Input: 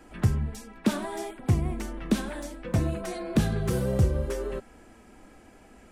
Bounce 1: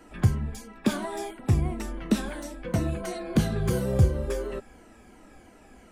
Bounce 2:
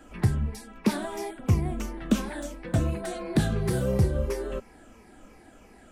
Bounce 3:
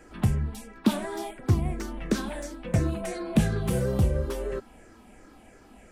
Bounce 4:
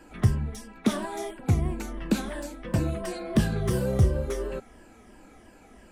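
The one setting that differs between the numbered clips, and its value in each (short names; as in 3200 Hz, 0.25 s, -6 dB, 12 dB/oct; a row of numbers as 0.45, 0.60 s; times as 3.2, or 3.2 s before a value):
moving spectral ripple, ripples per octave: 1.9, 0.83, 0.52, 1.3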